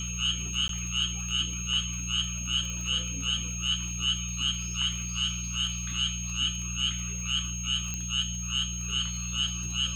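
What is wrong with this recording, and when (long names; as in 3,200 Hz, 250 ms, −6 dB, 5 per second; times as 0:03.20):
surface crackle 25 per second −34 dBFS
mains hum 60 Hz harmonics 3 −36 dBFS
whistle 6,500 Hz −35 dBFS
0:00.68–0:00.69: drop-out 13 ms
0:02.70: click −24 dBFS
0:07.94: click −19 dBFS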